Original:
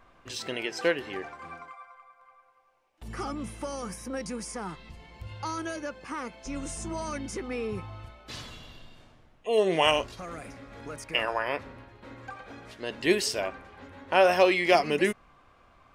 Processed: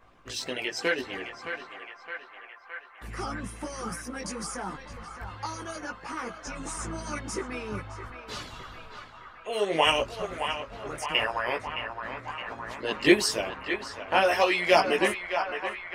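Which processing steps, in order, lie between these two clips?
chorus voices 4, 0.87 Hz, delay 18 ms, depth 2.1 ms; band-passed feedback delay 616 ms, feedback 84%, band-pass 1.3 kHz, level -6 dB; harmonic-percussive split percussive +9 dB; trim -2 dB

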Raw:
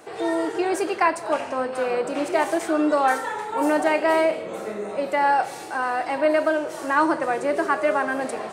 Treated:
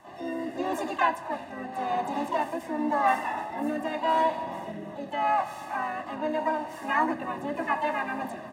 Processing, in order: harmony voices -4 st -7 dB, +7 st -3 dB; treble shelf 2.1 kHz -9 dB; comb 1.1 ms, depth 93%; on a send at -15 dB: reverberation RT60 4.5 s, pre-delay 55 ms; on the sum: rotary cabinet horn 0.85 Hz; trim -6 dB

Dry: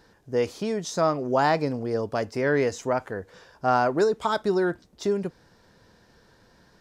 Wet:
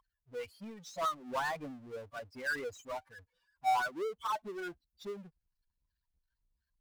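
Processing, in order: expander on every frequency bin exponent 3; wah-wah 2.9 Hz 720–1500 Hz, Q 8.4; power-law waveshaper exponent 0.5; trim -1.5 dB

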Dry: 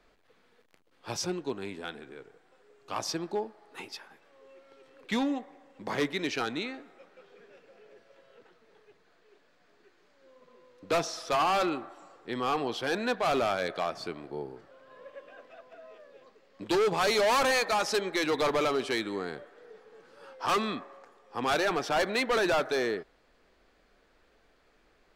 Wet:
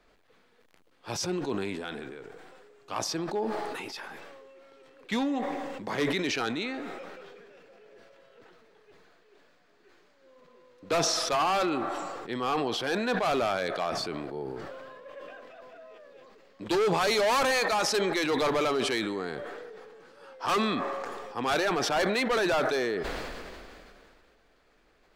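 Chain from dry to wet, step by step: decay stretcher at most 24 dB/s

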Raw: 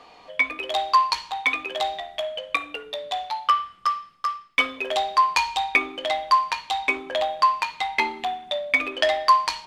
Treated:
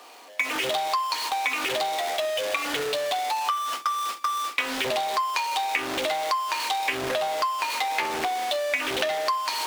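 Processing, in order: jump at every zero crossing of -21 dBFS; steep high-pass 250 Hz 36 dB/octave; hum notches 50/100/150/200/250/300/350/400/450 Hz; gate with hold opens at -16 dBFS; compression 6:1, threshold -23 dBFS, peak gain reduction 12.5 dB; loudspeaker Doppler distortion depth 0.46 ms

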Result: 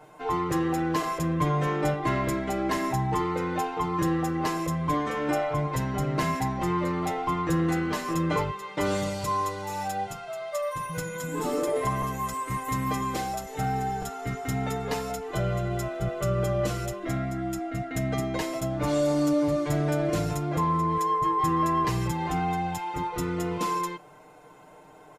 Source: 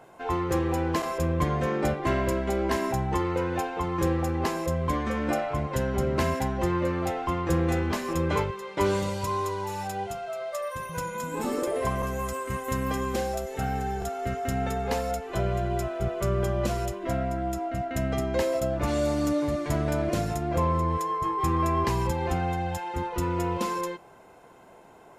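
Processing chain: comb 6.6 ms, depth 95%; in parallel at -0.5 dB: peak limiter -16.5 dBFS, peak gain reduction 7.5 dB; on the sum: trim -7.5 dB

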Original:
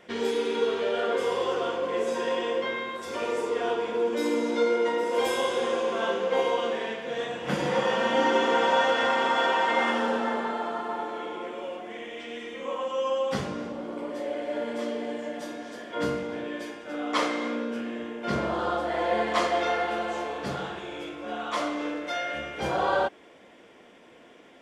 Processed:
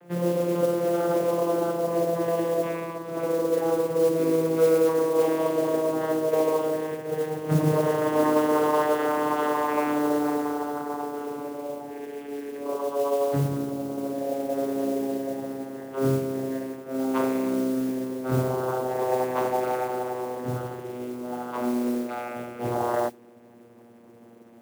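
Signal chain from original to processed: vocoder on a note that slides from F3, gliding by -7 st; low-pass 1.1 kHz 6 dB/octave; modulation noise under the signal 21 dB; trim +4 dB

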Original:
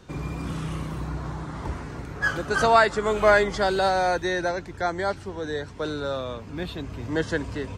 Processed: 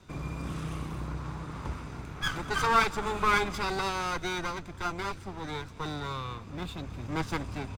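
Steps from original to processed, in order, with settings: comb filter that takes the minimum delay 0.81 ms; delay 217 ms -22.5 dB; trim -4 dB

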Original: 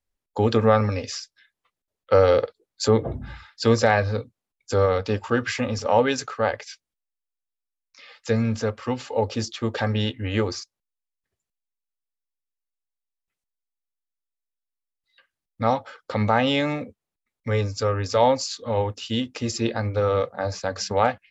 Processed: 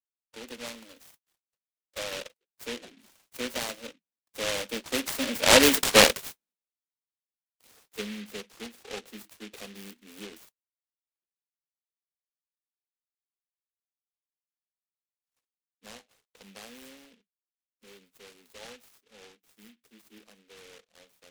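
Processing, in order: Doppler pass-by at 5.87 s, 25 m/s, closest 4.5 m; steep high-pass 180 Hz 96 dB/octave; delay time shaken by noise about 2.5 kHz, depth 0.26 ms; trim +8 dB

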